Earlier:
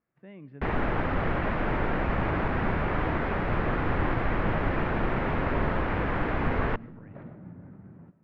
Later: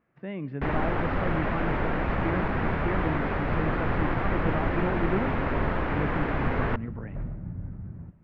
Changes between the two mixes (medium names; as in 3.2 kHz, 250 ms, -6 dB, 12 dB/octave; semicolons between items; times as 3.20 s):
speech +11.5 dB; second sound: remove high-pass 220 Hz 12 dB/octave